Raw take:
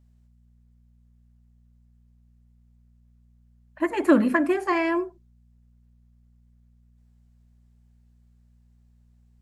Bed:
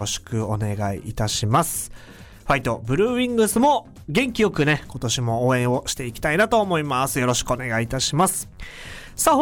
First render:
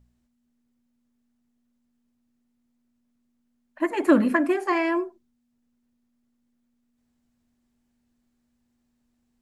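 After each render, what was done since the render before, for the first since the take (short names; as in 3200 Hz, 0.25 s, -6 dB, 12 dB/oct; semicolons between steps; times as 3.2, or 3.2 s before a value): de-hum 60 Hz, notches 3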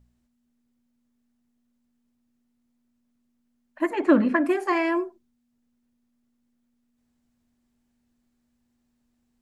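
3.93–4.46 air absorption 120 m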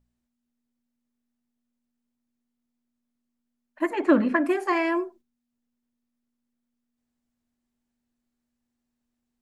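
gate -48 dBFS, range -7 dB; bell 76 Hz -4.5 dB 2.8 oct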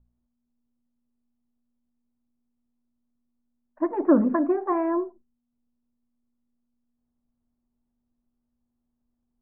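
LPF 1200 Hz 24 dB/oct; low shelf 110 Hz +9.5 dB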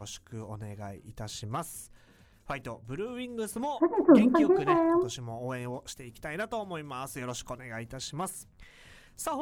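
add bed -16.5 dB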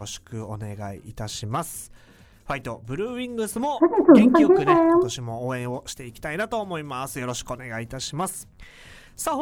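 gain +7.5 dB; limiter -2 dBFS, peak gain reduction 2.5 dB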